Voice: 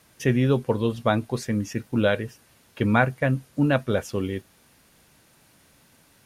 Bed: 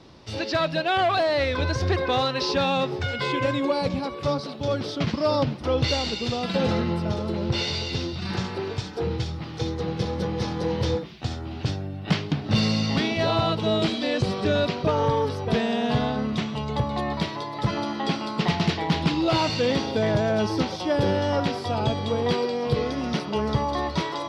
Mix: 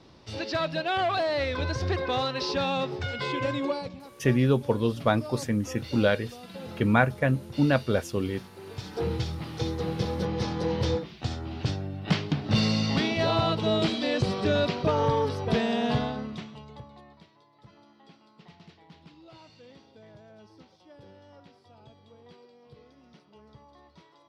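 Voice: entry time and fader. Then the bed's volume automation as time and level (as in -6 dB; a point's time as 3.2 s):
4.00 s, -1.5 dB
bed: 3.7 s -4.5 dB
3.97 s -17 dB
8.55 s -17 dB
8.95 s -2 dB
15.9 s -2 dB
17.27 s -29 dB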